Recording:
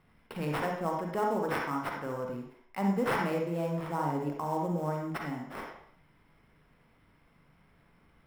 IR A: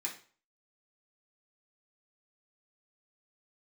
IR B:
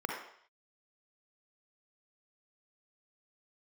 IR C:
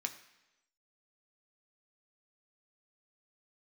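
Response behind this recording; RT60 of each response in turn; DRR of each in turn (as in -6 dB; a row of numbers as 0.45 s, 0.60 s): B; 0.40 s, 0.60 s, 1.0 s; -4.0 dB, 0.0 dB, 5.0 dB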